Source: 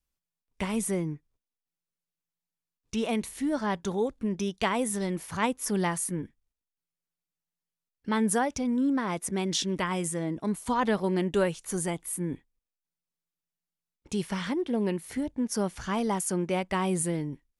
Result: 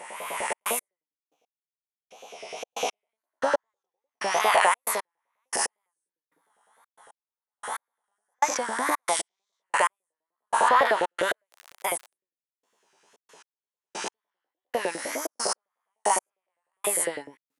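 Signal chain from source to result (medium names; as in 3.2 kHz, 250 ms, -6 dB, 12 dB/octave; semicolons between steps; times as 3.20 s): reverse spectral sustain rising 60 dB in 1.87 s; wow and flutter 130 cents; on a send at -20 dB: reverberation RT60 0.55 s, pre-delay 3 ms; on the sum: trance gate "xxxx.x....x....." 114 bpm -60 dB; 11.51–12.11 s: crackle 88 per s -34 dBFS; in parallel at +2 dB: peak limiter -16 dBFS, peak gain reduction 10.5 dB; on the sum: LFO high-pass saw up 9.9 Hz 500–1700 Hz; trim -4.5 dB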